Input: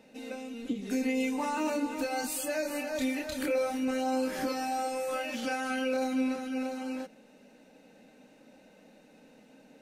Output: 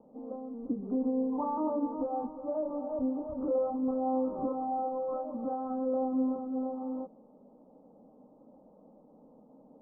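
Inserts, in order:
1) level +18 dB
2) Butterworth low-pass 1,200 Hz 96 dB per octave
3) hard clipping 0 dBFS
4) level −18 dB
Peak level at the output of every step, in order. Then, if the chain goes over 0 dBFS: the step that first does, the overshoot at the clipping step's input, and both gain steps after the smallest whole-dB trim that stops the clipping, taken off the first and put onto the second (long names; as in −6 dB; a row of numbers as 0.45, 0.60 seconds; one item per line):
−2.5, −3.0, −3.0, −21.0 dBFS
no step passes full scale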